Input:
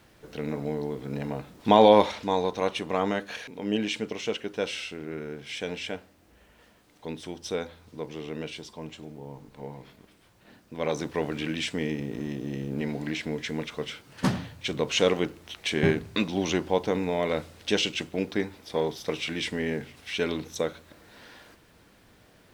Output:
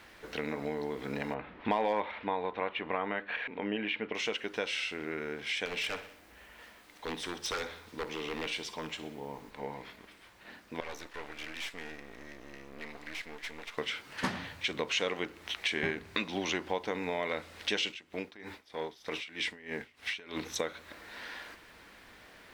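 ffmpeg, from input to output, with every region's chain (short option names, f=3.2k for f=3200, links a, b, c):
-filter_complex "[0:a]asettb=1/sr,asplit=3[a][b][c];[a]atrim=end=1.344[d];[b]atrim=start=1.34:end=4.15,asetpts=PTS-STARTPTS,afade=t=in:d=0.004:c=qsin,afade=t=out:st=2.806:d=0.004:c=qsin,lowpass=f=2.9k:w=0.5412,lowpass=f=2.9k:w=1.3066,asoftclip=type=hard:threshold=-7.5dB[e];[c]atrim=start=4.146[f];[d][e]acrossfade=d=0.004:c1=hsin:c2=qsin[g];[g][f]acrossfade=d=0.004:c1=qsin:c2=hsin,asettb=1/sr,asplit=3[h][i][j];[h]atrim=end=5.654[k];[i]atrim=start=5.65:end=9.51,asetpts=PTS-STARTPTS,afade=t=in:d=0.004:c=qsin,afade=t=out:st=3.856:d=0.004:c=qsin,highshelf=f=8.9k:g=6,aeval=exprs='0.0335*(abs(mod(val(0)/0.0335+3,4)-2)-1)':c=same,aecho=1:1:62|124|186|248|310:0.168|0.0923|0.0508|0.0279|0.0154,atrim=end_sample=170226[l];[j]atrim=start=9.506[m];[k][l]acrossfade=d=0.004:c1=hsin:c2=qsin[n];[n][m]acrossfade=d=0.004:c1=qsin:c2=hsin,asettb=1/sr,asplit=3[o][p][q];[o]atrim=end=10.804[r];[p]atrim=start=10.8:end=13.78,asetpts=PTS-STARTPTS,afade=t=in:d=0.004:c=qsin,afade=t=out:st=2.976:d=0.004:c=qsin,highpass=f=520:p=1,aeval=exprs='max(val(0),0)':c=same,aeval=exprs='(tanh(14.1*val(0)+0.75)-tanh(0.75))/14.1':c=same[s];[q]atrim=start=13.776[t];[r][s]acrossfade=d=0.004:c1=hsin:c2=qsin[u];[u][t]acrossfade=d=0.004:c1=qsin:c2=hsin,asettb=1/sr,asplit=3[v][w][x];[v]atrim=end=17.894[y];[w]atrim=start=17.89:end=20.37,asetpts=PTS-STARTPTS,afade=t=in:d=0.004:c=qsin,afade=t=out:st=2.476:d=0.004:c=qsin,acompressor=threshold=-29dB:ratio=4:attack=3.2:release=140:knee=1:detection=peak,aeval=exprs='val(0)*pow(10,-21*(0.5-0.5*cos(2*PI*3.2*n/s))/20)':c=same[z];[x]atrim=start=20.366[aa];[y][z]acrossfade=d=0.004:c1=hsin:c2=qsin[ab];[ab][aa]acrossfade=d=0.004:c1=qsin:c2=hsin,equalizer=f=125:t=o:w=1:g=-9,equalizer=f=1k:t=o:w=1:g=4,equalizer=f=2k:t=o:w=1:g=8,equalizer=f=4k:t=o:w=1:g=3,acompressor=threshold=-32dB:ratio=3"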